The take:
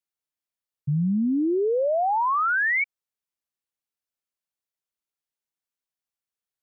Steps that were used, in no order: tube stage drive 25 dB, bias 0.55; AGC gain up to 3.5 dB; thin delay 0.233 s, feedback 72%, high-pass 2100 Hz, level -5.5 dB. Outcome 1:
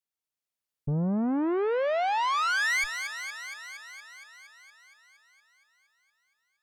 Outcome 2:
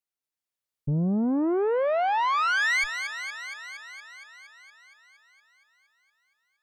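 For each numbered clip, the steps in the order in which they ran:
AGC > tube stage > thin delay; tube stage > AGC > thin delay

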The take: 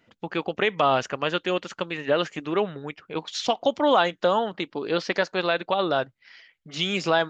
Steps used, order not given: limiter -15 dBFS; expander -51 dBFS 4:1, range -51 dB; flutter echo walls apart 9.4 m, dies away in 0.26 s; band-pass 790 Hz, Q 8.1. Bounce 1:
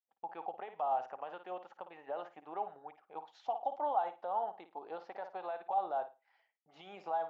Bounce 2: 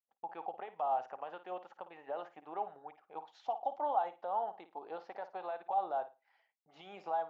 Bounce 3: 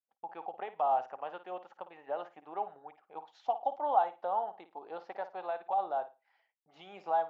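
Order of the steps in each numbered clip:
expander > flutter echo > limiter > band-pass; limiter > flutter echo > expander > band-pass; flutter echo > expander > band-pass > limiter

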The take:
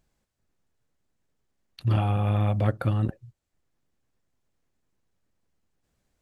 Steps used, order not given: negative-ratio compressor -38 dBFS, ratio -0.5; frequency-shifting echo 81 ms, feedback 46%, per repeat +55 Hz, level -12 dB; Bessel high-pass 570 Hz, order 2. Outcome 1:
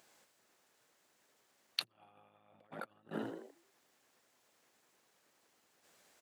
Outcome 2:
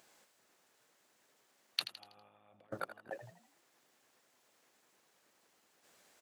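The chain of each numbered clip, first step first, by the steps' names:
frequency-shifting echo > negative-ratio compressor > Bessel high-pass; negative-ratio compressor > Bessel high-pass > frequency-shifting echo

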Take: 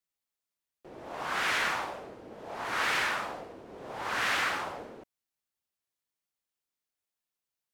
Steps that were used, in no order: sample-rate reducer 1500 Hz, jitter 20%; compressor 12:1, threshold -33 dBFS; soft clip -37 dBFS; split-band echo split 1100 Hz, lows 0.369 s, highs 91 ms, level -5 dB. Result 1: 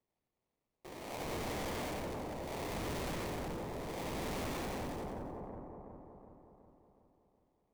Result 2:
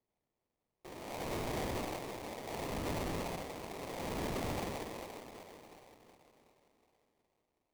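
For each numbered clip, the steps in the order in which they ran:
sample-rate reducer > split-band echo > soft clip > compressor; soft clip > compressor > split-band echo > sample-rate reducer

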